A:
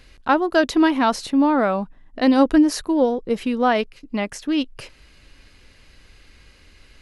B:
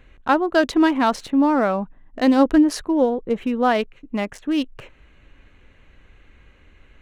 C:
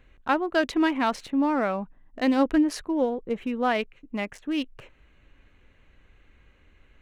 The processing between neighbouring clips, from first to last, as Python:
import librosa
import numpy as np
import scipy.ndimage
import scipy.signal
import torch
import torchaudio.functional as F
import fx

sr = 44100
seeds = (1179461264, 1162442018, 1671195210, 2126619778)

y1 = fx.wiener(x, sr, points=9)
y2 = fx.dynamic_eq(y1, sr, hz=2300.0, q=1.8, threshold_db=-41.0, ratio=4.0, max_db=6)
y2 = F.gain(torch.from_numpy(y2), -6.5).numpy()